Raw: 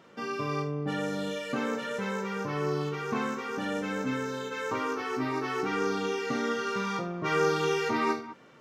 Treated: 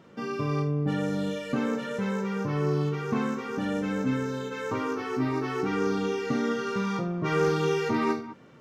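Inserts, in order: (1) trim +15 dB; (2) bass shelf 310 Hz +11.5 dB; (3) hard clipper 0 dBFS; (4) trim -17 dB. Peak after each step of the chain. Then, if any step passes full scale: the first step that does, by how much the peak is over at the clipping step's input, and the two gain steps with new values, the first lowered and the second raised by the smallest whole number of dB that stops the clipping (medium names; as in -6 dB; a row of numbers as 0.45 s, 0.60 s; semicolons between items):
+1.5 dBFS, +4.5 dBFS, 0.0 dBFS, -17.0 dBFS; step 1, 4.5 dB; step 1 +10 dB, step 4 -12 dB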